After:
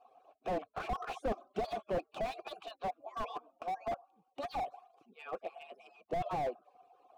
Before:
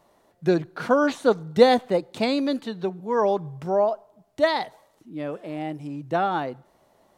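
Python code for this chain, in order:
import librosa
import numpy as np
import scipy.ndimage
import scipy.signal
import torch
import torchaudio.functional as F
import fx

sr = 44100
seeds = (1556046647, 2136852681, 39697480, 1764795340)

y = fx.hpss_only(x, sr, part='percussive')
y = fx.vowel_filter(y, sr, vowel='a')
y = fx.slew_limit(y, sr, full_power_hz=4.3)
y = F.gain(torch.from_numpy(y), 11.5).numpy()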